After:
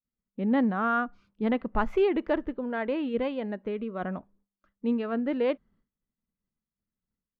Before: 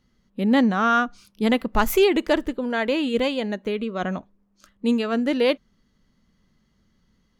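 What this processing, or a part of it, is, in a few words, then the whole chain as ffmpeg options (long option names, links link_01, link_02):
hearing-loss simulation: -af "lowpass=1800,agate=range=-33dB:threshold=-51dB:ratio=3:detection=peak,volume=-6dB"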